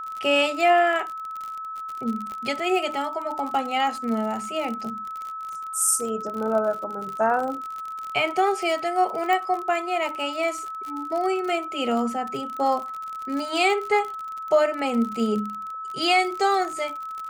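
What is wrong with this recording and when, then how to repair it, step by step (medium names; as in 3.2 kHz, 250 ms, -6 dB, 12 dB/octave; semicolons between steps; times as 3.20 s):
crackle 47 per s -29 dBFS
whine 1.3 kHz -31 dBFS
2.32 s: pop -24 dBFS
9.33 s: pop -13 dBFS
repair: de-click; band-stop 1.3 kHz, Q 30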